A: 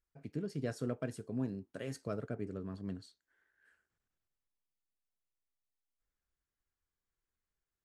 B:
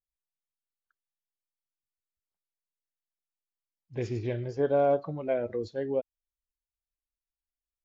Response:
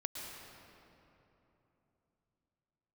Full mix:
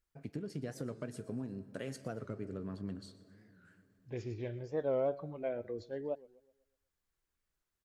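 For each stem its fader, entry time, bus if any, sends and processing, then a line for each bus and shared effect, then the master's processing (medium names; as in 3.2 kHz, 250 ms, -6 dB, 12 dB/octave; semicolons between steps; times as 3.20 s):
+2.0 dB, 0.00 s, send -13 dB, echo send -17.5 dB, compression 6:1, threshold -40 dBFS, peak gain reduction 9.5 dB
-8.5 dB, 0.15 s, no send, echo send -21.5 dB, none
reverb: on, RT60 3.3 s, pre-delay 103 ms
echo: feedback delay 122 ms, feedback 44%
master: warped record 45 rpm, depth 160 cents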